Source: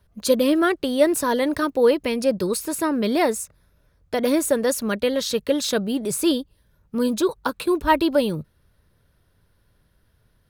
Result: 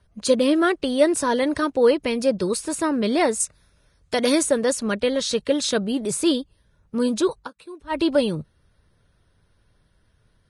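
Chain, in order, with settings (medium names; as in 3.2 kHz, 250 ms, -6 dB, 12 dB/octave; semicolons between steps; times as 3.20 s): 3.40–4.43 s: treble shelf 2.3 kHz +9.5 dB; 7.37–8.01 s: dip -18 dB, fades 0.12 s; Vorbis 32 kbps 22.05 kHz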